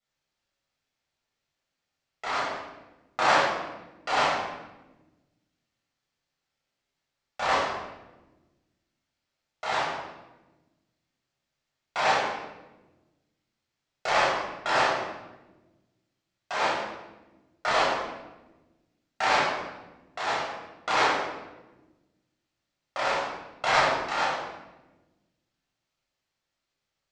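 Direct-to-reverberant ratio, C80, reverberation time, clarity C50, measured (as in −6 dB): −8.5 dB, 3.5 dB, 1.1 s, −0.5 dB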